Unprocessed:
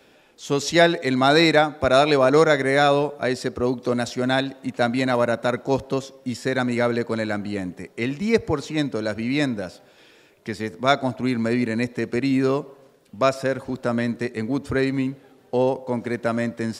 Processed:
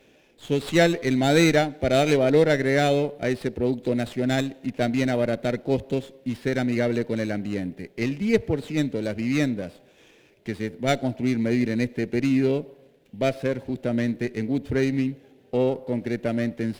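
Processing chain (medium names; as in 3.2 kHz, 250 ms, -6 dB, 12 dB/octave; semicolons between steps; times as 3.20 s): static phaser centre 2.8 kHz, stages 4; sliding maximum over 5 samples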